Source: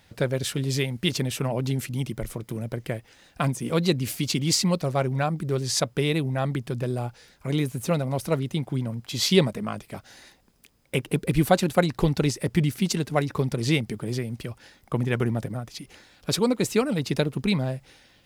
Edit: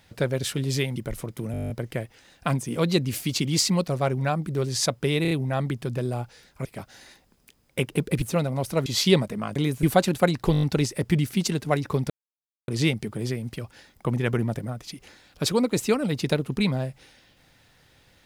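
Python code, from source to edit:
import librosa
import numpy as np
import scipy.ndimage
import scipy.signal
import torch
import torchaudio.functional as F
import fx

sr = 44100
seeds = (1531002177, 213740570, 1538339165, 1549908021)

y = fx.edit(x, sr, fx.cut(start_s=0.96, length_s=1.12),
    fx.stutter(start_s=2.64, slice_s=0.02, count=10),
    fx.stutter(start_s=6.16, slice_s=0.03, count=4),
    fx.swap(start_s=7.5, length_s=0.27, other_s=9.81, other_length_s=1.57),
    fx.cut(start_s=8.41, length_s=0.7),
    fx.stutter(start_s=12.07, slice_s=0.02, count=6),
    fx.insert_silence(at_s=13.55, length_s=0.58), tone=tone)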